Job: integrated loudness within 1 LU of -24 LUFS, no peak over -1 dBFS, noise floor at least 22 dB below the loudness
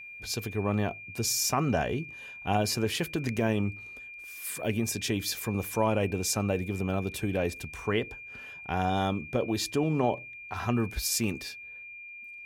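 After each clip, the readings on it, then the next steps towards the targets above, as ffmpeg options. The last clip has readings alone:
steady tone 2.4 kHz; tone level -42 dBFS; loudness -30.0 LUFS; peak level -12.5 dBFS; loudness target -24.0 LUFS
-> -af "bandreject=f=2400:w=30"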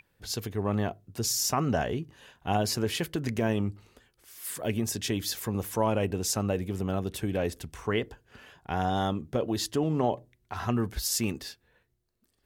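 steady tone not found; loudness -30.0 LUFS; peak level -13.0 dBFS; loudness target -24.0 LUFS
-> -af "volume=2"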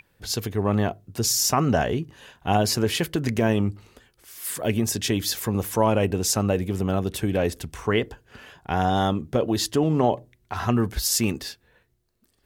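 loudness -24.0 LUFS; peak level -6.5 dBFS; noise floor -67 dBFS

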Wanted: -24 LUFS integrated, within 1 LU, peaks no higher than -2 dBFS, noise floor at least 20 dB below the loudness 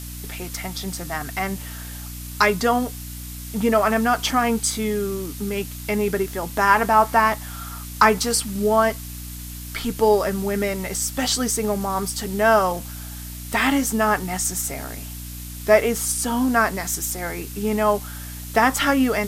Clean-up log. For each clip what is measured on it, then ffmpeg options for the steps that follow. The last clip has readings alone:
hum 60 Hz; highest harmonic 300 Hz; hum level -33 dBFS; noise floor -34 dBFS; noise floor target -42 dBFS; loudness -21.5 LUFS; peak level -1.0 dBFS; loudness target -24.0 LUFS
-> -af "bandreject=f=60:t=h:w=4,bandreject=f=120:t=h:w=4,bandreject=f=180:t=h:w=4,bandreject=f=240:t=h:w=4,bandreject=f=300:t=h:w=4"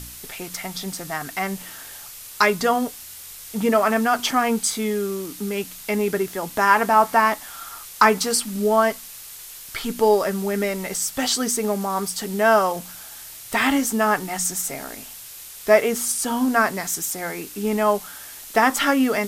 hum not found; noise floor -40 dBFS; noise floor target -42 dBFS
-> -af "afftdn=nr=6:nf=-40"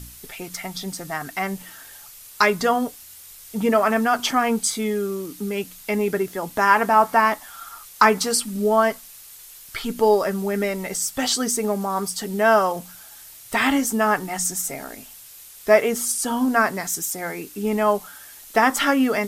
noise floor -44 dBFS; loudness -21.5 LUFS; peak level -1.5 dBFS; loudness target -24.0 LUFS
-> -af "volume=0.75"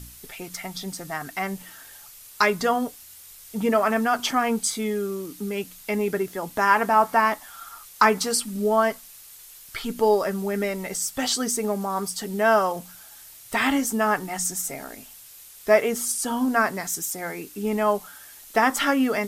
loudness -24.0 LUFS; peak level -4.0 dBFS; noise floor -46 dBFS

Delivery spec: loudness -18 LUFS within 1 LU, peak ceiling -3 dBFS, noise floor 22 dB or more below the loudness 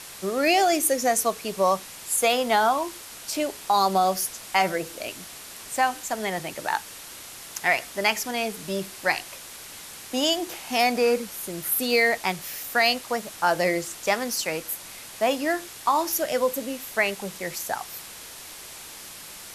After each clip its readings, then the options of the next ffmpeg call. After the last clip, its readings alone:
noise floor -42 dBFS; noise floor target -47 dBFS; loudness -25.0 LUFS; peak level -7.0 dBFS; loudness target -18.0 LUFS
-> -af "afftdn=nr=6:nf=-42"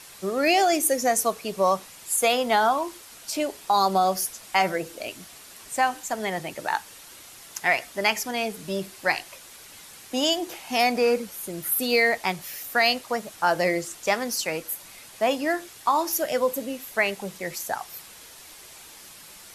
noise floor -46 dBFS; noise floor target -47 dBFS
-> -af "afftdn=nr=6:nf=-46"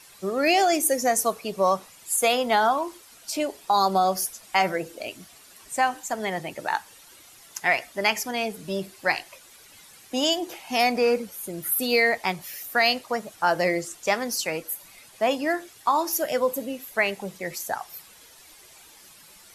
noise floor -51 dBFS; loudness -25.0 LUFS; peak level -7.5 dBFS; loudness target -18.0 LUFS
-> -af "volume=2.24,alimiter=limit=0.708:level=0:latency=1"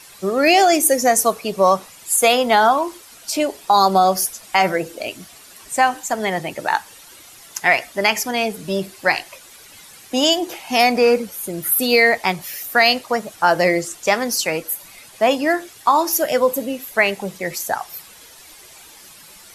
loudness -18.0 LUFS; peak level -3.0 dBFS; noise floor -44 dBFS

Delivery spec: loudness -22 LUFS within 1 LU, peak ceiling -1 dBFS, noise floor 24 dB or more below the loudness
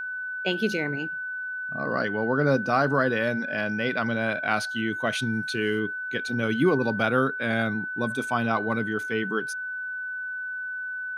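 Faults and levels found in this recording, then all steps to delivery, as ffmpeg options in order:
steady tone 1.5 kHz; tone level -30 dBFS; loudness -26.5 LUFS; peak level -9.0 dBFS; loudness target -22.0 LUFS
-> -af "bandreject=f=1500:w=30"
-af "volume=1.68"

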